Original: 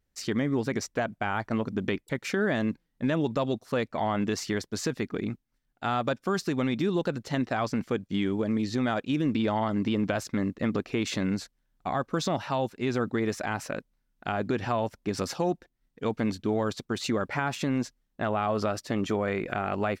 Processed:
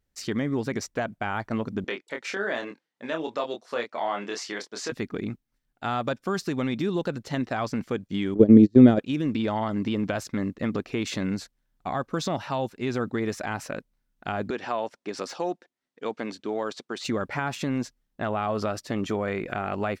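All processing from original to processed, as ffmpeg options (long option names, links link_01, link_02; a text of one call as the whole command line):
ffmpeg -i in.wav -filter_complex "[0:a]asettb=1/sr,asplit=3[link_01][link_02][link_03];[link_01]atrim=end=1.844[link_04];[link_02]atrim=start=1.84:end=4.92,asetpts=PTS-STARTPTS,afade=type=in:duration=0.004:curve=qsin,afade=type=out:start_time=3.076:duration=0.004:curve=qsin,highpass=460,lowpass=7000,asplit=2[link_05][link_06];[link_06]adelay=25,volume=-4.5dB[link_07];[link_05][link_07]amix=inputs=2:normalize=0,atrim=end_sample=135828[link_08];[link_03]atrim=start=4.916[link_09];[link_04][link_08]acrossfade=duration=0.004:curve1=hsin:curve2=qsin[link_10];[link_10][link_09]acrossfade=duration=0.004:curve1=qsin:curve2=hsin,asettb=1/sr,asplit=3[link_11][link_12][link_13];[link_11]atrim=end=8.344[link_14];[link_12]atrim=start=8.34:end=8.99,asetpts=PTS-STARTPTS,afade=type=in:duration=0.004:curve=qsin,afade=type=out:start_time=0.646:duration=0.004:curve=qsin,agate=range=-37dB:threshold=-28dB:ratio=16:release=100:detection=peak,lowshelf=frequency=630:width_type=q:width=1.5:gain=14,acompressor=mode=upward:threshold=-24dB:ratio=2.5:attack=3.2:release=140:knee=2.83:detection=peak[link_15];[link_13]atrim=start=8.986[link_16];[link_14][link_15]acrossfade=duration=0.004:curve1=hsin:curve2=qsin[link_17];[link_17][link_16]acrossfade=duration=0.004:curve1=qsin:curve2=hsin,asettb=1/sr,asplit=3[link_18][link_19][link_20];[link_18]atrim=end=14.504[link_21];[link_19]atrim=start=14.5:end=17.05,asetpts=PTS-STARTPTS,afade=type=in:duration=0.004:curve=qsin,afade=type=out:start_time=2.546:duration=0.004:curve=qsin,highpass=330,lowpass=7700,deesser=0.85[link_22];[link_20]atrim=start=17.046[link_23];[link_21][link_22]acrossfade=duration=0.004:curve1=hsin:curve2=qsin[link_24];[link_24][link_23]acrossfade=duration=0.004:curve1=qsin:curve2=hsin" out.wav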